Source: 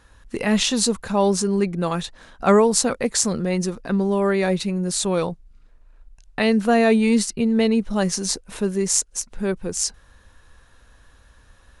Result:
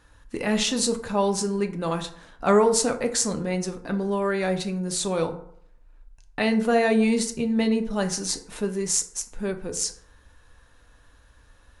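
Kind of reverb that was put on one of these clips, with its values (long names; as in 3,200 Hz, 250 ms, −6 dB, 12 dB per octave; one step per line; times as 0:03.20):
feedback delay network reverb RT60 0.65 s, low-frequency decay 0.85×, high-frequency decay 0.5×, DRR 5.5 dB
level −4 dB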